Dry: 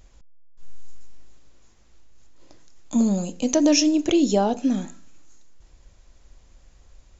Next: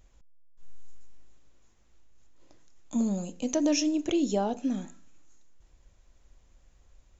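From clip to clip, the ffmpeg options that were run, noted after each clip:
-af "equalizer=f=4.7k:t=o:w=0.44:g=-4,volume=-7.5dB"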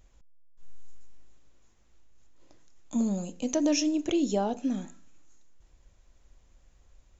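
-af anull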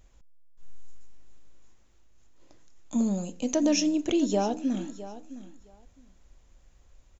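-af "aecho=1:1:661|1322:0.178|0.0267,volume=1.5dB"

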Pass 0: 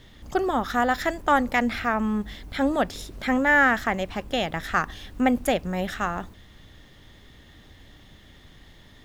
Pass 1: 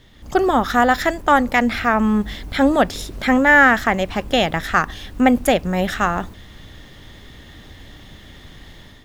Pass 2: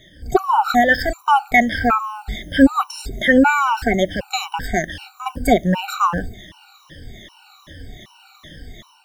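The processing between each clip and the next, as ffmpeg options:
-af "dynaudnorm=f=110:g=5:m=9dB"
-af "afftfilt=real='re*pow(10,18/40*sin(2*PI*(1.2*log(max(b,1)*sr/1024/100)/log(2)-(-2.5)*(pts-256)/sr)))':imag='im*pow(10,18/40*sin(2*PI*(1.2*log(max(b,1)*sr/1024/100)/log(2)-(-2.5)*(pts-256)/sr)))':win_size=1024:overlap=0.75,afftfilt=real='re*gt(sin(2*PI*1.3*pts/sr)*(1-2*mod(floor(b*sr/1024/760),2)),0)':imag='im*gt(sin(2*PI*1.3*pts/sr)*(1-2*mod(floor(b*sr/1024/760),2)),0)':win_size=1024:overlap=0.75"

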